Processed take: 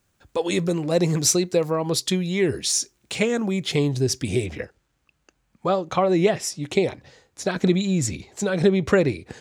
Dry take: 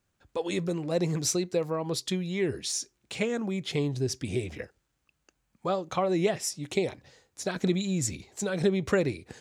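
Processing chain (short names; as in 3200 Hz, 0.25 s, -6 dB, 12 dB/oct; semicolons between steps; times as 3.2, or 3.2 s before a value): high shelf 6100 Hz +4 dB, from 4.46 s -6.5 dB; gain +7 dB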